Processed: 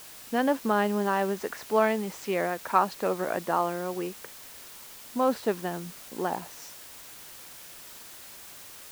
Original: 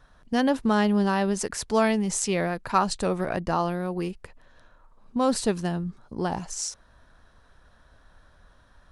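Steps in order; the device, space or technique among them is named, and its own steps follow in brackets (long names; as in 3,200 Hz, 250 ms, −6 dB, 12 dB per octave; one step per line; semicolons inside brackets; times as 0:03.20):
wax cylinder (band-pass filter 300–2,400 Hz; tape wow and flutter 27 cents; white noise bed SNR 16 dB)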